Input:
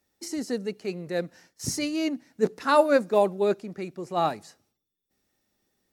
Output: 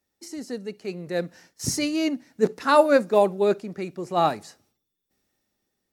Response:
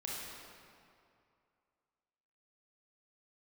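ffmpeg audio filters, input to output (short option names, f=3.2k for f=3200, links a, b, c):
-filter_complex "[0:a]dynaudnorm=f=330:g=7:m=11dB,asplit=2[a][b];[1:a]atrim=start_sample=2205,atrim=end_sample=3087[c];[b][c]afir=irnorm=-1:irlink=0,volume=-17.5dB[d];[a][d]amix=inputs=2:normalize=0,volume=-5dB"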